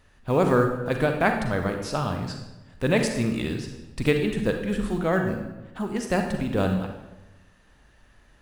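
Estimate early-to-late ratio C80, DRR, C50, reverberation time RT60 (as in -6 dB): 8.0 dB, 4.0 dB, 5.5 dB, 1.0 s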